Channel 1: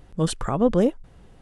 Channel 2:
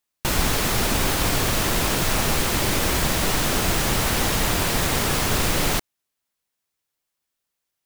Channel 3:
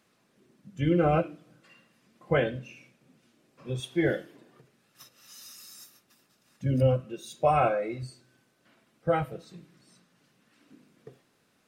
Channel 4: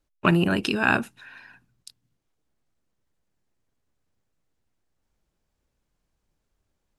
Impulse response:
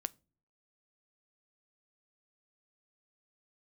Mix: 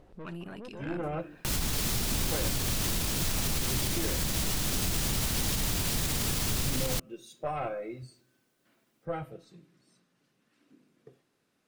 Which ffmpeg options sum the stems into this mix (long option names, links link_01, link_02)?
-filter_complex "[0:a]lowpass=4700,equalizer=frequency=500:width_type=o:width=2.2:gain=11,volume=-6dB[link_01];[1:a]alimiter=limit=-17.5dB:level=0:latency=1:release=223,acrossover=split=270|3000[link_02][link_03][link_04];[link_03]acompressor=threshold=-40dB:ratio=6[link_05];[link_02][link_05][link_04]amix=inputs=3:normalize=0,adelay=1200,volume=2dB[link_06];[2:a]equalizer=frequency=340:width_type=o:width=0.77:gain=3.5,aeval=exprs='0.316*(cos(1*acos(clip(val(0)/0.316,-1,1)))-cos(1*PI/2))+0.126*(cos(2*acos(clip(val(0)/0.316,-1,1)))-cos(2*PI/2))':channel_layout=same,volume=-7dB,asplit=2[link_07][link_08];[link_08]volume=-6.5dB[link_09];[3:a]volume=-10dB,asplit=3[link_10][link_11][link_12];[link_11]volume=-18.5dB[link_13];[link_12]apad=whole_len=62379[link_14];[link_01][link_14]sidechaincompress=threshold=-40dB:ratio=8:attack=16:release=390[link_15];[link_15][link_07][link_10]amix=inputs=3:normalize=0,aeval=exprs='(tanh(14.1*val(0)+0.8)-tanh(0.8))/14.1':channel_layout=same,alimiter=level_in=11.5dB:limit=-24dB:level=0:latency=1:release=132,volume=-11.5dB,volume=0dB[link_16];[4:a]atrim=start_sample=2205[link_17];[link_09][link_13]amix=inputs=2:normalize=0[link_18];[link_18][link_17]afir=irnorm=-1:irlink=0[link_19];[link_06][link_16][link_19]amix=inputs=3:normalize=0,alimiter=limit=-19.5dB:level=0:latency=1:release=60"